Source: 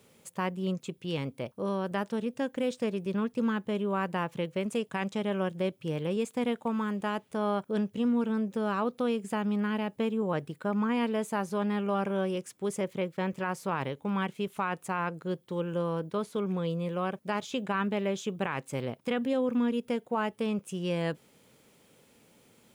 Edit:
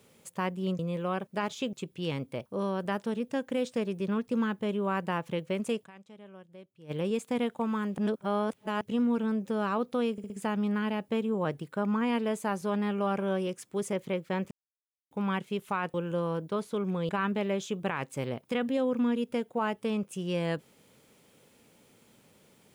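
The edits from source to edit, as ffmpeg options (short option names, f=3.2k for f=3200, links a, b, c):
-filter_complex "[0:a]asplit=14[a][b][c][d][e][f][g][h][i][j][k][l][m][n];[a]atrim=end=0.792[o];[b]atrim=start=16.708:end=17.652[p];[c]atrim=start=0.788:end=5.04,asetpts=PTS-STARTPTS,afade=t=out:st=4.112:d=0.14:c=exp:silence=0.105925[q];[d]atrim=start=5.04:end=5.83,asetpts=PTS-STARTPTS,volume=-19.5dB[r];[e]atrim=start=5.83:end=7.042,asetpts=PTS-STARTPTS,afade=t=in:d=0.14:c=exp:silence=0.105925[s];[f]atrim=start=7.038:end=7.872,asetpts=PTS-STARTPTS,areverse[t];[g]atrim=start=7.868:end=9.242[u];[h]atrim=start=9.178:end=9.242[v];[i]atrim=start=9.178:end=9.242[w];[j]atrim=start=9.178:end=13.39,asetpts=PTS-STARTPTS,afade=t=out:st=4.208:d=0.004:c=hsin[x];[k]atrim=start=13.39:end=13.99,asetpts=PTS-STARTPTS,volume=0[y];[l]atrim=start=13.99:end=14.822,asetpts=PTS-STARTPTS,afade=t=in:d=0.004:c=hsin[z];[m]atrim=start=15.558:end=16.712[aa];[n]atrim=start=17.648[ab];[o][p]acrossfade=d=0.004:c1=hsin:c2=hsin[ac];[q][r][s]concat=n=3:v=0:a=1[ad];[ac][ad]acrossfade=d=0.004:c1=hsin:c2=hsin[ae];[ae][t]acrossfade=d=0.004:c1=hsin:c2=hsin[af];[af][u]acrossfade=d=0.004:c1=hsin:c2=hsin[ag];[ag][v]acrossfade=d=0.004:c1=hsin:c2=hsin[ah];[ah][w]acrossfade=d=0.004:c1=hsin:c2=hsin[ai];[x][y][z]concat=n=3:v=0:a=1[aj];[ai][aj]acrossfade=d=0.004:c1=hsin:c2=hsin[ak];[ak][aa]acrossfade=d=0.004:c1=hsin:c2=hsin[al];[al][ab]acrossfade=d=0.004:c1=hsin:c2=hsin"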